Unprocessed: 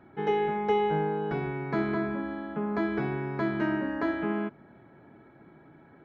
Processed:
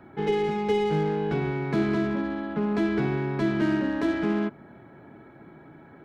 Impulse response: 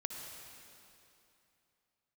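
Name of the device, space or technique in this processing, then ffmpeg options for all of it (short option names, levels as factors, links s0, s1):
one-band saturation: -filter_complex "[0:a]acrossover=split=460|2300[s0][s1][s2];[s1]asoftclip=type=tanh:threshold=0.0106[s3];[s0][s3][s2]amix=inputs=3:normalize=0,volume=1.88"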